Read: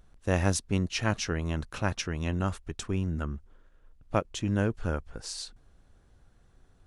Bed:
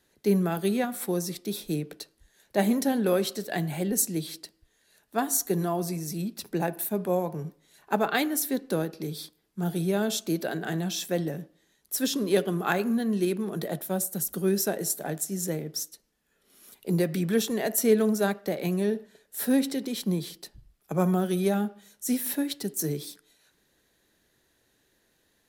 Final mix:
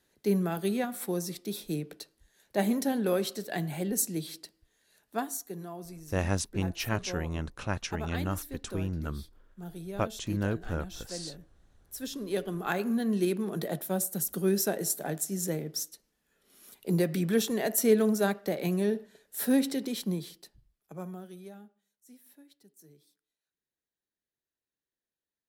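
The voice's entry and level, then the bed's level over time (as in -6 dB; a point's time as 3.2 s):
5.85 s, -3.0 dB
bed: 5.15 s -3.5 dB
5.43 s -13.5 dB
11.75 s -13.5 dB
13.07 s -1.5 dB
19.9 s -1.5 dB
21.99 s -28 dB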